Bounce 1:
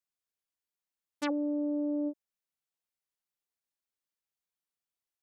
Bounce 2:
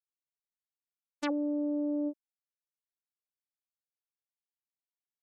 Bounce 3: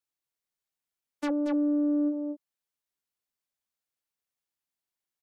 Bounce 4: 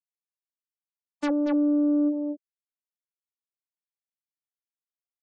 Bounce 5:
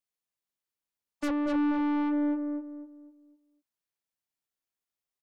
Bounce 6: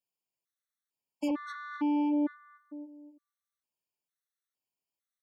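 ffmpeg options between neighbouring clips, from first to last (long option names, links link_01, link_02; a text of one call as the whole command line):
ffmpeg -i in.wav -af "agate=range=-33dB:threshold=-33dB:ratio=3:detection=peak" out.wav
ffmpeg -i in.wav -filter_complex "[0:a]aecho=1:1:231:0.562,acrossover=split=300[link_01][link_02];[link_02]asoftclip=type=tanh:threshold=-28.5dB[link_03];[link_01][link_03]amix=inputs=2:normalize=0,volume=4dB" out.wav
ffmpeg -i in.wav -af "afftfilt=real='re*gte(hypot(re,im),0.00398)':imag='im*gte(hypot(re,im),0.00398)':win_size=1024:overlap=0.75,volume=3.5dB" out.wav
ffmpeg -i in.wav -filter_complex "[0:a]asoftclip=type=tanh:threshold=-30dB,asplit=2[link_01][link_02];[link_02]adelay=251,lowpass=frequency=1100:poles=1,volume=-3.5dB,asplit=2[link_03][link_04];[link_04]adelay=251,lowpass=frequency=1100:poles=1,volume=0.36,asplit=2[link_05][link_06];[link_06]adelay=251,lowpass=frequency=1100:poles=1,volume=0.36,asplit=2[link_07][link_08];[link_08]adelay=251,lowpass=frequency=1100:poles=1,volume=0.36,asplit=2[link_09][link_10];[link_10]adelay=251,lowpass=frequency=1100:poles=1,volume=0.36[link_11];[link_03][link_05][link_07][link_09][link_11]amix=inputs=5:normalize=0[link_12];[link_01][link_12]amix=inputs=2:normalize=0,volume=3.5dB" out.wav
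ffmpeg -i in.wav -af "highpass=80,afftfilt=real='re*gt(sin(2*PI*1.1*pts/sr)*(1-2*mod(floor(b*sr/1024/1100),2)),0)':imag='im*gt(sin(2*PI*1.1*pts/sr)*(1-2*mod(floor(b*sr/1024/1100),2)),0)':win_size=1024:overlap=0.75" out.wav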